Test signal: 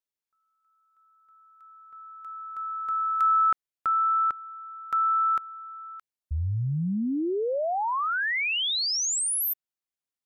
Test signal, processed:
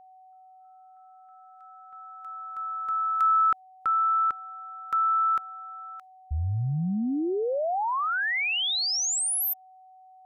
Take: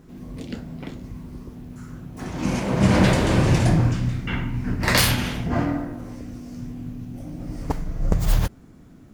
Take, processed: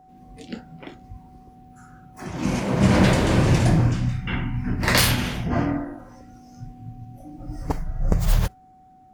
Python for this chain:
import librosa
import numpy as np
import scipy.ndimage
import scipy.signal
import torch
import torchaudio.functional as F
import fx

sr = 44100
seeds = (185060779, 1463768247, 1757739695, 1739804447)

y = fx.noise_reduce_blind(x, sr, reduce_db=11)
y = y + 10.0 ** (-50.0 / 20.0) * np.sin(2.0 * np.pi * 750.0 * np.arange(len(y)) / sr)